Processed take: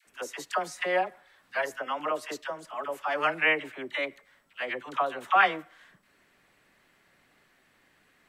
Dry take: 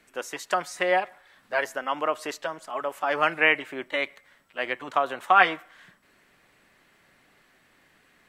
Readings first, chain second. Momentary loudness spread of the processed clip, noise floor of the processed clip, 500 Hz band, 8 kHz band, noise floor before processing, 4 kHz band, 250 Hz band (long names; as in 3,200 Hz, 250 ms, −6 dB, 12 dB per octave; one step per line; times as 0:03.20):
14 LU, −66 dBFS, −3.5 dB, −3.5 dB, −63 dBFS, −3.5 dB, −3.5 dB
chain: all-pass dispersion lows, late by 65 ms, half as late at 700 Hz
level −3.5 dB